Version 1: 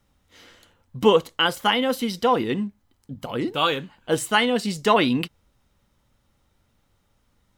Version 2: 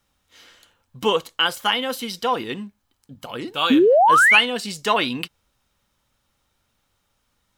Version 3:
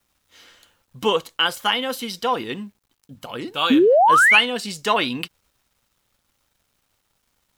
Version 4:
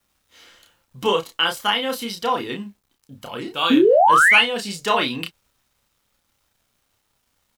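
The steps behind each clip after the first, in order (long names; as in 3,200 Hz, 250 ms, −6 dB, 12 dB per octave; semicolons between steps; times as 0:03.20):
tilt shelving filter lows −5 dB, about 690 Hz; notch filter 2,000 Hz, Q 17; sound drawn into the spectrogram rise, 0:03.70–0:04.41, 240–3,000 Hz −11 dBFS; level −2.5 dB
bit reduction 11 bits
double-tracking delay 30 ms −4.5 dB; level −1 dB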